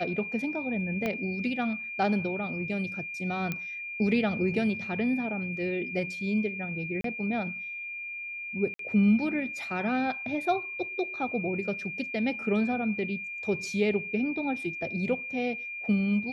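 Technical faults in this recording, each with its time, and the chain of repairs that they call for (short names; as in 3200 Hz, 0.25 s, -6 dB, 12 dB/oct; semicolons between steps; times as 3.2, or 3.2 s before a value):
tone 2400 Hz -35 dBFS
1.06 pop -17 dBFS
3.52 pop -17 dBFS
7.01–7.04 gap 33 ms
8.74–8.79 gap 53 ms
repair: de-click; notch 2400 Hz, Q 30; interpolate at 7.01, 33 ms; interpolate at 8.74, 53 ms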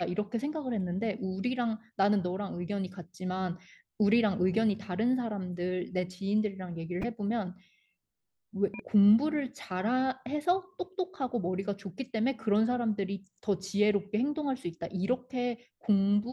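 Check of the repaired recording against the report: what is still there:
1.06 pop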